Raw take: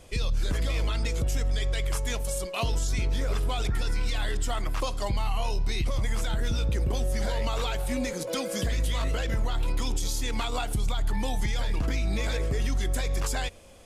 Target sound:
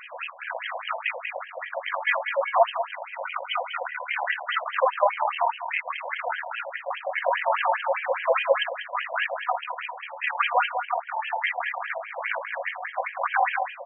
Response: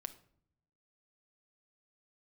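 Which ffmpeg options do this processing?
-filter_complex "[0:a]asoftclip=type=tanh:threshold=0.0596,aeval=exprs='0.0596*(cos(1*acos(clip(val(0)/0.0596,-1,1)))-cos(1*PI/2))+0.015*(cos(2*acos(clip(val(0)/0.0596,-1,1)))-cos(2*PI/2))':c=same,asettb=1/sr,asplit=3[s0][s1][s2];[s0]atrim=end=3.054[s3];[s1]atrim=start=3.05:end=3.77,asetpts=PTS-STARTPTS,afade=t=in:d=0.004:c=qsin,afade=t=out:st=0.716:d=0.004:c=qsin,asuperstop=centerf=1700:order=4:qfactor=4.5[s4];[s2]atrim=start=3.766[s5];[s3][s4]acrossfade=d=0.004:c1=hsin:c2=qsin[s6];[s6][s5]acrossfade=d=0.004:c1=qsin:c2=hsin,aecho=1:1:191:0.335[s7];[1:a]atrim=start_sample=2205,atrim=end_sample=4410,asetrate=61740,aresample=44100[s8];[s7][s8]afir=irnorm=-1:irlink=0,alimiter=level_in=28.2:limit=0.891:release=50:level=0:latency=1,afftfilt=real='re*between(b*sr/1024,720*pow(2300/720,0.5+0.5*sin(2*PI*4.9*pts/sr))/1.41,720*pow(2300/720,0.5+0.5*sin(2*PI*4.9*pts/sr))*1.41)':imag='im*between(b*sr/1024,720*pow(2300/720,0.5+0.5*sin(2*PI*4.9*pts/sr))/1.41,720*pow(2300/720,0.5+0.5*sin(2*PI*4.9*pts/sr))*1.41)':win_size=1024:overlap=0.75"

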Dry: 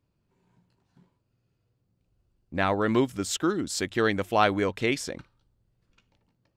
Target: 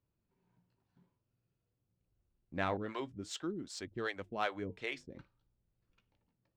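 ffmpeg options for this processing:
-filter_complex "[0:a]flanger=delay=1.6:depth=8.5:regen=-72:speed=0.5:shape=triangular,adynamicsmooth=sensitivity=2.5:basefreq=5900,asettb=1/sr,asplit=3[s0][s1][s2];[s0]atrim=end=2.774[s3];[s1]atrim=start=2.77:end=5.16,asetpts=PTS-STARTPTS,afade=t=in:d=0.004:c=qsin,afade=t=out:st=2.386:d=0.004:c=qsin,acrossover=split=440[s4][s5];[s4]aeval=exprs='val(0)*(1-1/2+1/2*cos(2*PI*2.6*n/s))':c=same[s6];[s5]aeval=exprs='val(0)*(1-1/2-1/2*cos(2*PI*2.6*n/s))':c=same[s7];[s6][s7]amix=inputs=2:normalize=0[s8];[s2]atrim=start=5.156[s9];[s3][s8]acrossfade=d=0.004:c1=hsin:c2=qsin[s10];[s10][s9]acrossfade=d=0.004:c1=qsin:c2=hsin,volume=0.562"

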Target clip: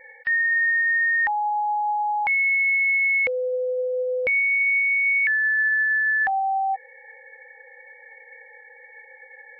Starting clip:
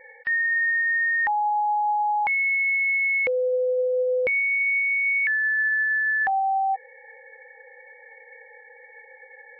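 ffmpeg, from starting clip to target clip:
-af "equalizer=f=160:t=o:w=0.67:g=-5,equalizer=f=400:t=o:w=0.67:g=-8,equalizer=f=1000:t=o:w=0.67:g=-4,volume=1.33"

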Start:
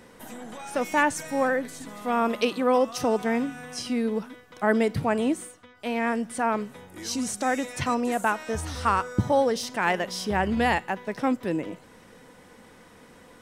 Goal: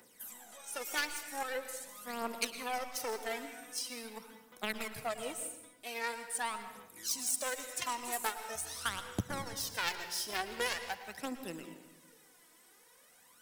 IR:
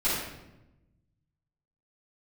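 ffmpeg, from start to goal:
-filter_complex "[0:a]aeval=exprs='0.355*(cos(1*acos(clip(val(0)/0.355,-1,1)))-cos(1*PI/2))+0.1*(cos(3*acos(clip(val(0)/0.355,-1,1)))-cos(3*PI/2))':c=same,acrossover=split=150[s0][s1];[s1]acompressor=threshold=0.0158:ratio=4[s2];[s0][s2]amix=inputs=2:normalize=0,aemphasis=mode=production:type=riaa,aphaser=in_gain=1:out_gain=1:delay=3.2:decay=0.65:speed=0.44:type=triangular,asplit=2[s3][s4];[1:a]atrim=start_sample=2205,adelay=105[s5];[s4][s5]afir=irnorm=-1:irlink=0,volume=0.0944[s6];[s3][s6]amix=inputs=2:normalize=0"

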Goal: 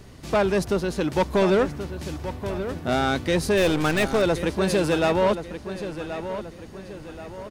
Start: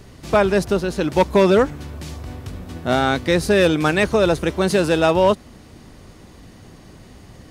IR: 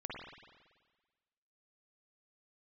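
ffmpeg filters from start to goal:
-filter_complex "[0:a]asoftclip=type=tanh:threshold=0.251,asettb=1/sr,asplit=3[s0][s1][s2];[s0]atrim=end=3.574[s3];[s1]atrim=start=3.57:end=4.22,asetpts=PTS-STARTPTS,afade=t=in:d=0.004:c=qsin,afade=t=out:st=0.646:d=0.004:c=qsin,aeval=exprs='0.251*(cos(1*acos(clip(val(0)/0.251,-1,1)))-cos(1*PI/2))+0.0282*(cos(8*acos(clip(val(0)/0.251,-1,1)))-cos(8*PI/2))':c=same[s4];[s2]atrim=start=4.216[s5];[s3][s4]acrossfade=d=0.004:c1=hsin:c2=qsin[s6];[s6][s5]acrossfade=d=0.004:c1=qsin:c2=hsin,asplit=2[s7][s8];[s8]adelay=1079,lowpass=f=4200:p=1,volume=0.299,asplit=2[s9][s10];[s10]adelay=1079,lowpass=f=4200:p=1,volume=0.44,asplit=2[s11][s12];[s12]adelay=1079,lowpass=f=4200:p=1,volume=0.44,asplit=2[s13][s14];[s14]adelay=1079,lowpass=f=4200:p=1,volume=0.44,asplit=2[s15][s16];[s16]adelay=1079,lowpass=f=4200:p=1,volume=0.44[s17];[s9][s11][s13][s15][s17]amix=inputs=5:normalize=0[s18];[s7][s18]amix=inputs=2:normalize=0,volume=0.75"

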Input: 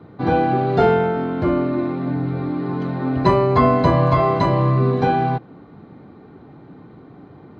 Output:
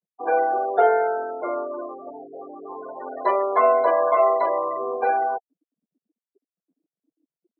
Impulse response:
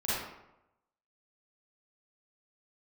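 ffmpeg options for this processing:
-af "afftfilt=real='re*gte(hypot(re,im),0.0794)':imag='im*gte(hypot(re,im),0.0794)':win_size=1024:overlap=0.75,highpass=f=430:w=0.5412,highpass=f=430:w=1.3066,equalizer=f=470:t=q:w=4:g=6,equalizer=f=680:t=q:w=4:g=10,equalizer=f=1100:t=q:w=4:g=4,equalizer=f=1600:t=q:w=4:g=8,equalizer=f=2400:t=q:w=4:g=6,lowpass=f=2900:w=0.5412,lowpass=f=2900:w=1.3066,volume=0.447"

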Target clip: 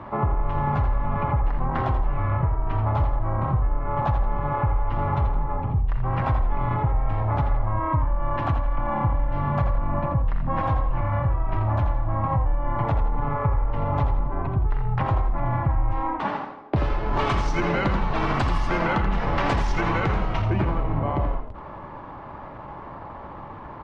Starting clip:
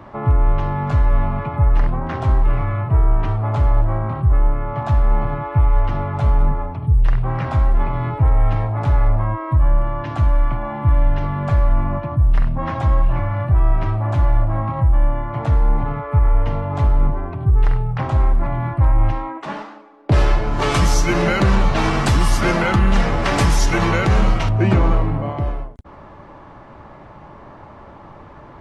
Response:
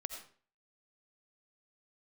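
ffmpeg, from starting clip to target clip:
-filter_complex "[0:a]lowpass=3700,equalizer=f=970:w=2.2:g=4.5,acompressor=threshold=0.112:ratio=16,atempo=1.2,asplit=5[s0][s1][s2][s3][s4];[s1]adelay=83,afreqshift=-33,volume=0.422[s5];[s2]adelay=166,afreqshift=-66,volume=0.148[s6];[s3]adelay=249,afreqshift=-99,volume=0.0519[s7];[s4]adelay=332,afreqshift=-132,volume=0.018[s8];[s0][s5][s6][s7][s8]amix=inputs=5:normalize=0"

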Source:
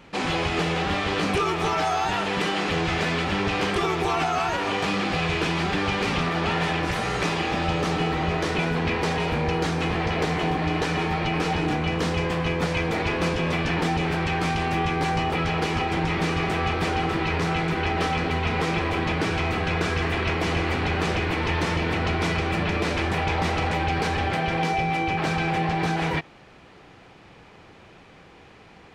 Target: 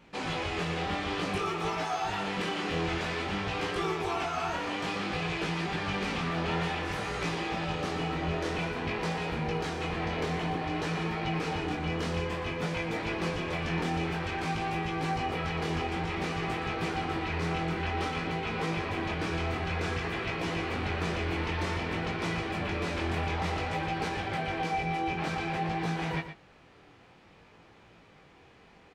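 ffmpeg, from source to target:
-af "flanger=delay=17.5:depth=6.7:speed=0.54,aecho=1:1:118:0.299,volume=0.562"

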